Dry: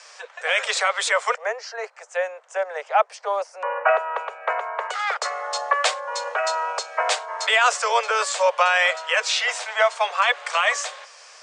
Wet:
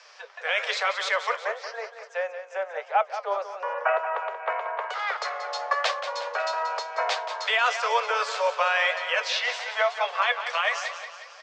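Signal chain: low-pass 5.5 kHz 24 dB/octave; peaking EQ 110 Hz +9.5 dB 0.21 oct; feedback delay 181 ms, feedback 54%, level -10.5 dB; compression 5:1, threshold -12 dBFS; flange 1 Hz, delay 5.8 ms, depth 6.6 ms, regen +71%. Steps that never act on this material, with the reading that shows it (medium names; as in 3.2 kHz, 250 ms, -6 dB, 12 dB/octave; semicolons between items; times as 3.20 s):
peaking EQ 110 Hz: input has nothing below 380 Hz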